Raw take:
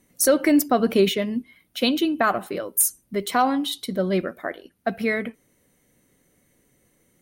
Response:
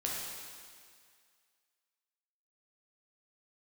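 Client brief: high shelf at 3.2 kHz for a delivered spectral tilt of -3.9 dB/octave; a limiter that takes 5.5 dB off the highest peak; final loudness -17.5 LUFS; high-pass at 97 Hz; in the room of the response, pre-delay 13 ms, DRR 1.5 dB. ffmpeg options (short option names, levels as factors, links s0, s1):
-filter_complex "[0:a]highpass=97,highshelf=f=3200:g=-3.5,alimiter=limit=0.211:level=0:latency=1,asplit=2[s0][s1];[1:a]atrim=start_sample=2205,adelay=13[s2];[s1][s2]afir=irnorm=-1:irlink=0,volume=0.531[s3];[s0][s3]amix=inputs=2:normalize=0,volume=1.88"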